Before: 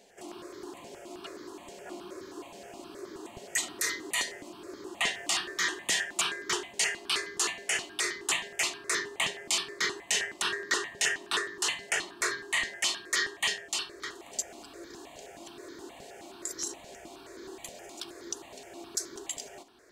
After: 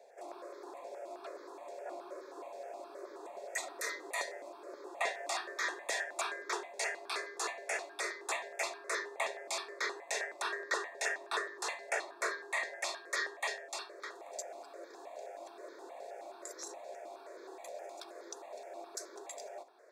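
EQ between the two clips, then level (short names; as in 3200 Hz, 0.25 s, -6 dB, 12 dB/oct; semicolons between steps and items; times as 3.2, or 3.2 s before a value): ladder high-pass 490 Hz, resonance 55%; Butterworth band-stop 3000 Hz, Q 4.8; high shelf 2200 Hz -10 dB; +8.0 dB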